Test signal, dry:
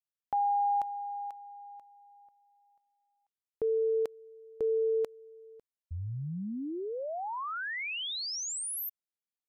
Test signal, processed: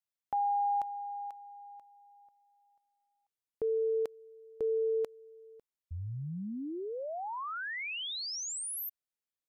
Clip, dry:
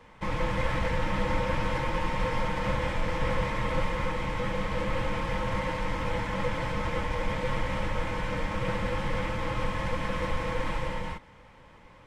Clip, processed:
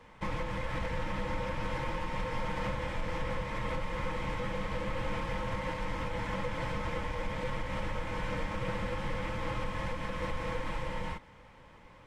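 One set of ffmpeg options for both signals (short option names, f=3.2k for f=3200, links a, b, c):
-af "alimiter=limit=-22.5dB:level=0:latency=1:release=249,volume=-2dB"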